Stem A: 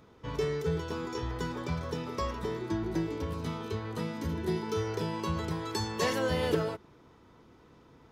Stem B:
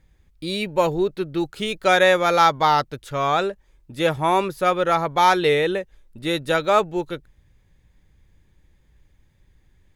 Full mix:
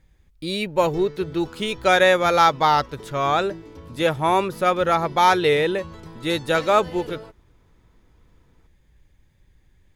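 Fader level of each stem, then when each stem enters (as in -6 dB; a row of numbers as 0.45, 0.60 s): -7.0, 0.0 dB; 0.55, 0.00 s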